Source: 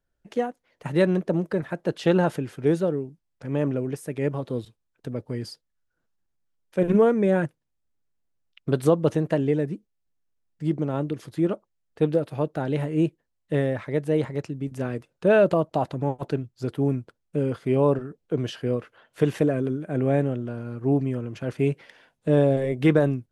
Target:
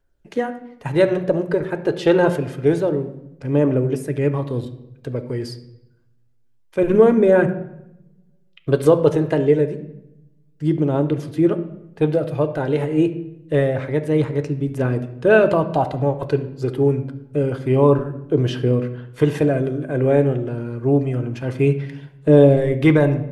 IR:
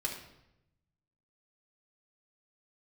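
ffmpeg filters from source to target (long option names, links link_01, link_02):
-filter_complex "[0:a]aphaser=in_gain=1:out_gain=1:delay=2.5:decay=0.29:speed=0.27:type=triangular,asplit=2[link_01][link_02];[1:a]atrim=start_sample=2205,highshelf=frequency=5600:gain=-11[link_03];[link_02][link_03]afir=irnorm=-1:irlink=0,volume=-4dB[link_04];[link_01][link_04]amix=inputs=2:normalize=0,volume=1.5dB"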